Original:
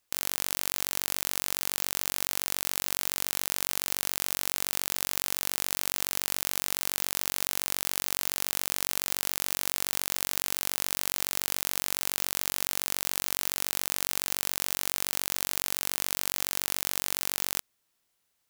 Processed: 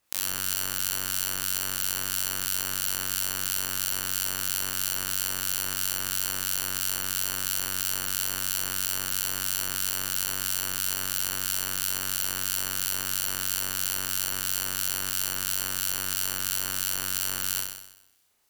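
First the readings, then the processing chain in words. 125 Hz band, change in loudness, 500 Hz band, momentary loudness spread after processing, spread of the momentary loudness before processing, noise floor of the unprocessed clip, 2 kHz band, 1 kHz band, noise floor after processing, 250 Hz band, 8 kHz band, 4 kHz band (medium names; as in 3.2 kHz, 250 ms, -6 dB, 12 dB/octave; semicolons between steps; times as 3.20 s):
+5.0 dB, +2.5 dB, -2.5 dB, 1 LU, 0 LU, -76 dBFS, +2.0 dB, +0.5 dB, -36 dBFS, +1.5 dB, +2.5 dB, +2.0 dB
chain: in parallel at -5.5 dB: sine folder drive 5 dB, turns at -2 dBFS; on the sum: harmonic tremolo 3 Hz, depth 50%, crossover 2.3 kHz; flutter echo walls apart 5.4 m, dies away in 0.84 s; trim -3 dB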